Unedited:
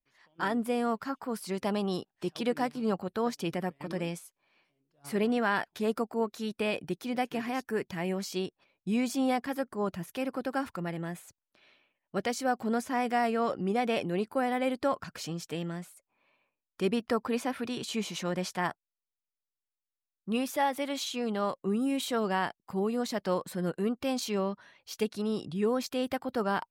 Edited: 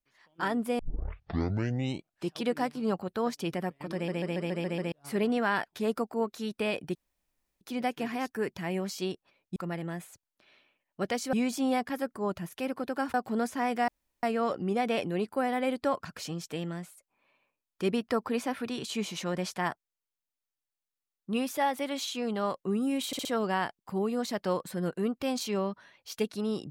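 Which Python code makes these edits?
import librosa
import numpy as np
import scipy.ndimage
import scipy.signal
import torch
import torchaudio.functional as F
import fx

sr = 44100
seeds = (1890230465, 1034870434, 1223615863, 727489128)

y = fx.edit(x, sr, fx.tape_start(start_s=0.79, length_s=1.51),
    fx.stutter_over(start_s=3.94, slice_s=0.14, count=7),
    fx.insert_room_tone(at_s=6.95, length_s=0.66),
    fx.move(start_s=10.71, length_s=1.77, to_s=8.9),
    fx.insert_room_tone(at_s=13.22, length_s=0.35),
    fx.stutter(start_s=22.06, slice_s=0.06, count=4), tone=tone)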